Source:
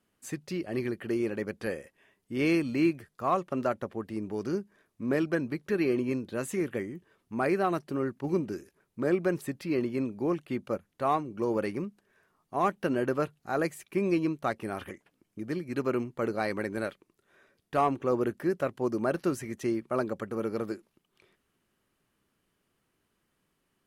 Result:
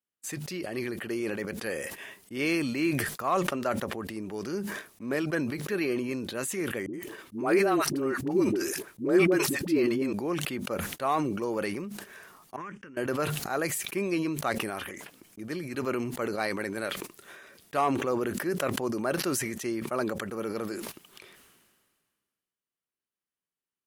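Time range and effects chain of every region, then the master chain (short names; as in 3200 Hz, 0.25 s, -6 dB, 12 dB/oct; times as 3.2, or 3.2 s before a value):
6.86–10.13 bell 330 Hz +9 dB 0.54 oct + dispersion highs, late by 75 ms, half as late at 470 Hz
12.56–12.97 compressor 16:1, threshold -39 dBFS + LPF 6500 Hz 24 dB/oct + fixed phaser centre 1700 Hz, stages 4
whole clip: gate -53 dBFS, range -21 dB; tilt +2 dB/oct; sustainer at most 34 dB/s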